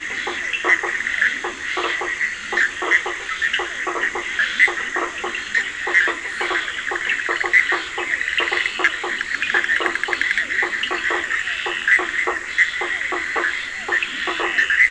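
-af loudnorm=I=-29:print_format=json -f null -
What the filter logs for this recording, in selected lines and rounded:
"input_i" : "-19.3",
"input_tp" : "-1.8",
"input_lra" : "0.7",
"input_thresh" : "-29.3",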